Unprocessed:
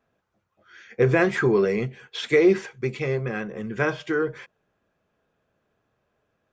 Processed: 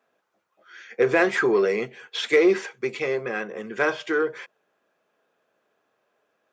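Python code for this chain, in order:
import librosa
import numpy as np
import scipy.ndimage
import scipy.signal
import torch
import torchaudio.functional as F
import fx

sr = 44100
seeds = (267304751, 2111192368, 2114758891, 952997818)

p1 = scipy.signal.sosfilt(scipy.signal.butter(2, 360.0, 'highpass', fs=sr, output='sos'), x)
p2 = 10.0 ** (-21.5 / 20.0) * np.tanh(p1 / 10.0 ** (-21.5 / 20.0))
y = p1 + (p2 * 10.0 ** (-6.5 / 20.0))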